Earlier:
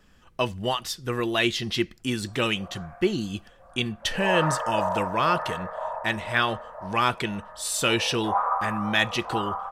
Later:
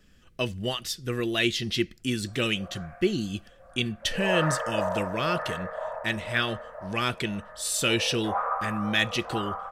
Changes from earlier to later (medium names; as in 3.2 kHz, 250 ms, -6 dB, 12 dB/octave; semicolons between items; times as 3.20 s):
background +5.0 dB; master: add peaking EQ 930 Hz -12.5 dB 0.89 oct